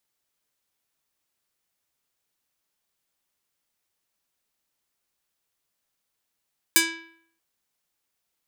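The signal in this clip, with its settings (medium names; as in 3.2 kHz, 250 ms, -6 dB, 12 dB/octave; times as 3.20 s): plucked string E4, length 0.63 s, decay 0.64 s, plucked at 0.49, medium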